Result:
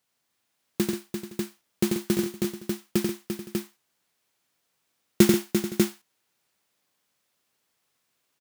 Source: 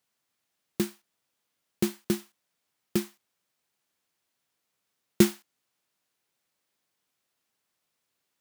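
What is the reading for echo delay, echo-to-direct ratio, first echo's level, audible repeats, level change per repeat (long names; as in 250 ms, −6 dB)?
89 ms, 0.5 dB, −4.0 dB, 6, repeats not evenly spaced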